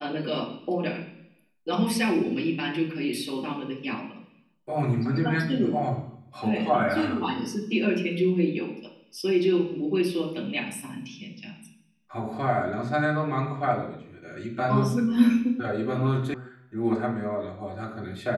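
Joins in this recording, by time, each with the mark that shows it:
16.34 s: sound stops dead

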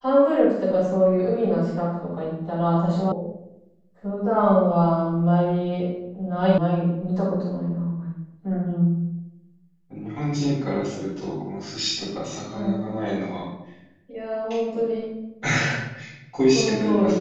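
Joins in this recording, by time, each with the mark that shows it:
3.12 s: sound stops dead
6.58 s: sound stops dead

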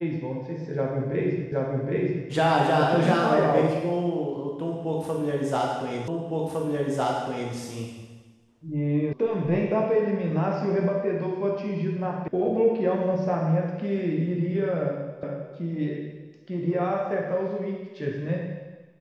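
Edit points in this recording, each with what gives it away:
1.52 s: repeat of the last 0.77 s
6.08 s: repeat of the last 1.46 s
9.13 s: sound stops dead
12.28 s: sound stops dead
15.23 s: repeat of the last 0.32 s

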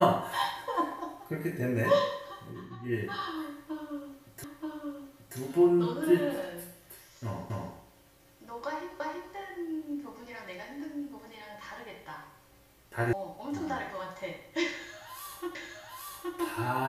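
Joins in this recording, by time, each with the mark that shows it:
4.44 s: repeat of the last 0.93 s
7.50 s: repeat of the last 0.25 s
9.00 s: repeat of the last 0.33 s
13.13 s: sound stops dead
15.55 s: repeat of the last 0.82 s

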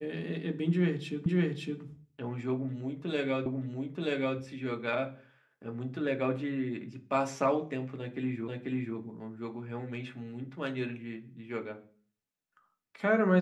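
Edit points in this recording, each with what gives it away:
1.26 s: repeat of the last 0.56 s
3.46 s: repeat of the last 0.93 s
8.48 s: repeat of the last 0.49 s

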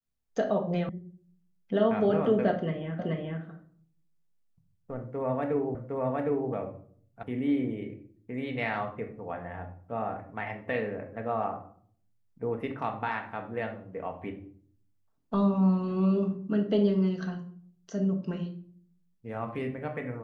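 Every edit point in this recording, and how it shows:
0.89 s: sound stops dead
2.99 s: repeat of the last 0.43 s
5.75 s: repeat of the last 0.76 s
7.23 s: sound stops dead

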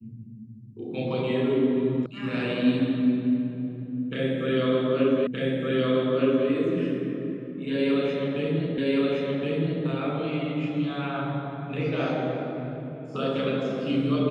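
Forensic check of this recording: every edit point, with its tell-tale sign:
2.06 s: sound stops dead
5.27 s: repeat of the last 1.22 s
8.78 s: repeat of the last 1.07 s

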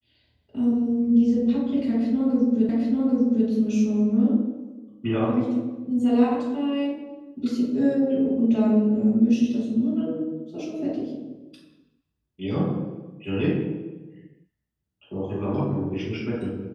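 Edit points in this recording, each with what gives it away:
2.69 s: repeat of the last 0.79 s

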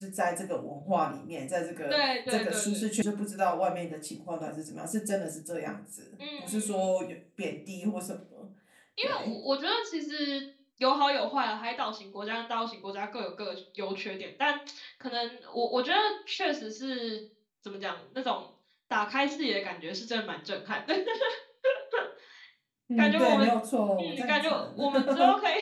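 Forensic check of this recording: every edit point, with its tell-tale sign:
3.02 s: sound stops dead

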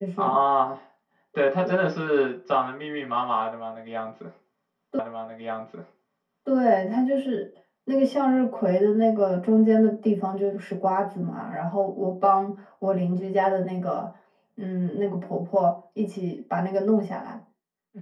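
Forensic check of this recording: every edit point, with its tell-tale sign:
4.99 s: repeat of the last 1.53 s

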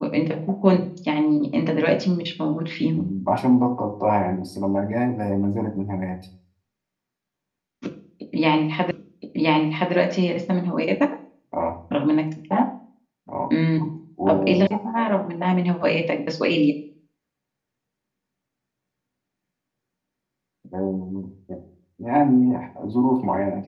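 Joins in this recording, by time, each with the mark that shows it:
8.91 s: repeat of the last 1.02 s
14.67 s: sound stops dead

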